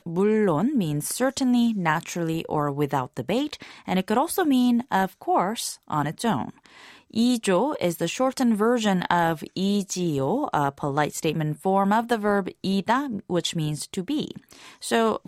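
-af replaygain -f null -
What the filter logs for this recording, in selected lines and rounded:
track_gain = +4.8 dB
track_peak = 0.367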